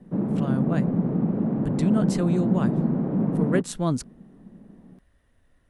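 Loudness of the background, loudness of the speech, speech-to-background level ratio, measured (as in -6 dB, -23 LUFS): -25.0 LUFS, -28.5 LUFS, -3.5 dB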